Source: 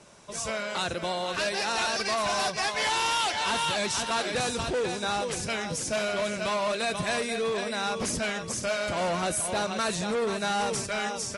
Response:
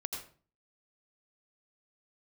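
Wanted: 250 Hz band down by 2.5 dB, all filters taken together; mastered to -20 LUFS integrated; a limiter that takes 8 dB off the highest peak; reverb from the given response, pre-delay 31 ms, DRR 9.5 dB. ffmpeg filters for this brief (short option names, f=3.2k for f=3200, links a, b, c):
-filter_complex "[0:a]equalizer=f=250:t=o:g=-3.5,alimiter=level_in=3dB:limit=-24dB:level=0:latency=1,volume=-3dB,asplit=2[a][b];[1:a]atrim=start_sample=2205,adelay=31[c];[b][c]afir=irnorm=-1:irlink=0,volume=-10dB[d];[a][d]amix=inputs=2:normalize=0,volume=12.5dB"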